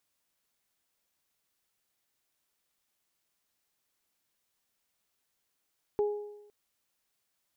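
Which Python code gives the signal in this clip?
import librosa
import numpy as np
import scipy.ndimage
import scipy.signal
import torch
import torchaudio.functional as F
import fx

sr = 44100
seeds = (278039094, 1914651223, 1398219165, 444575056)

y = fx.additive(sr, length_s=0.51, hz=415.0, level_db=-23.0, upper_db=(-13,), decay_s=0.92, upper_decays_s=(0.78,))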